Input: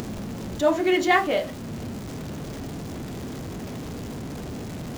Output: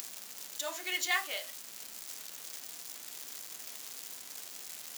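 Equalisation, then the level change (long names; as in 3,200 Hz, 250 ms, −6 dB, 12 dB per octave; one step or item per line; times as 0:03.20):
first difference
low-shelf EQ 350 Hz −12 dB
+3.5 dB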